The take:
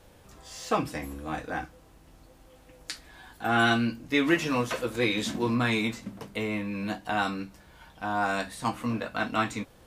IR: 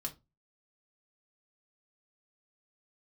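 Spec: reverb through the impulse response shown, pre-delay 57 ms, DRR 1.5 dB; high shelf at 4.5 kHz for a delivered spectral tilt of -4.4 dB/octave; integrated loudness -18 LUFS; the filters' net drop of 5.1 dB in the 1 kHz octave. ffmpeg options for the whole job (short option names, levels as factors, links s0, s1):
-filter_complex "[0:a]equalizer=f=1000:t=o:g=-7,highshelf=f=4500:g=-7,asplit=2[s0][s1];[1:a]atrim=start_sample=2205,adelay=57[s2];[s1][s2]afir=irnorm=-1:irlink=0,volume=0.944[s3];[s0][s3]amix=inputs=2:normalize=0,volume=2.82"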